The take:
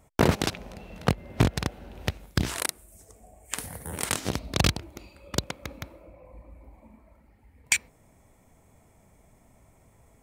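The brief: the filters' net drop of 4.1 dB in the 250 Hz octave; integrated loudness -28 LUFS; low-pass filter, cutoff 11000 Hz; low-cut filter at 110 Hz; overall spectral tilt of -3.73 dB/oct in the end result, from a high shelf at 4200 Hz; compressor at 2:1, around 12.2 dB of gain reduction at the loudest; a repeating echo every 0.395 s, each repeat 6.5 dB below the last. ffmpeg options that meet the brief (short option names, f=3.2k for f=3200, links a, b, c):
-af "highpass=110,lowpass=11k,equalizer=f=250:t=o:g=-5.5,highshelf=f=4.2k:g=4.5,acompressor=threshold=-41dB:ratio=2,aecho=1:1:395|790|1185|1580|1975|2370:0.473|0.222|0.105|0.0491|0.0231|0.0109,volume=12dB"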